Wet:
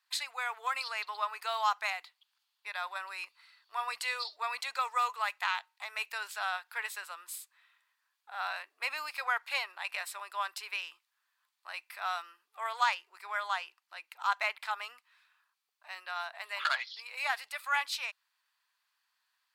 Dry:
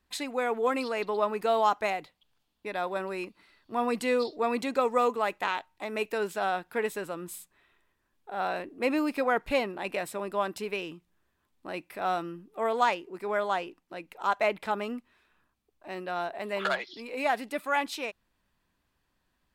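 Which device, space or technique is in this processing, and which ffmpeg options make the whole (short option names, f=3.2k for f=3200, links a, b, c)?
headphones lying on a table: -af "highpass=f=1k:w=0.5412,highpass=f=1k:w=1.3066,equalizer=f=4.5k:t=o:w=0.36:g=5.5"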